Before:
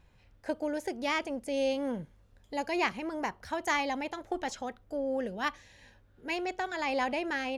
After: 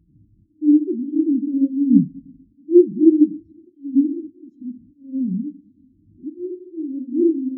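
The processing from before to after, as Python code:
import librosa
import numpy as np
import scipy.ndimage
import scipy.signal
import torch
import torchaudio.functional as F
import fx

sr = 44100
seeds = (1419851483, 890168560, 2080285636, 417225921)

y = x + 0.5 * 10.0 ** (-33.5 / 20.0) * np.sign(x)
y = scipy.signal.sosfilt(scipy.signal.butter(2, 59.0, 'highpass', fs=sr, output='sos'), y)
y = fx.peak_eq(y, sr, hz=83.0, db=2.0, octaves=0.77)
y = fx.auto_swell(y, sr, attack_ms=227.0)
y = fx.brickwall_bandstop(y, sr, low_hz=700.0, high_hz=3000.0)
y = fx.low_shelf_res(y, sr, hz=410.0, db=10.5, q=3.0)
y = fx.room_shoebox(y, sr, seeds[0], volume_m3=1700.0, walls='mixed', distance_m=0.92)
y = fx.spectral_expand(y, sr, expansion=2.5)
y = y * librosa.db_to_amplitude(3.5)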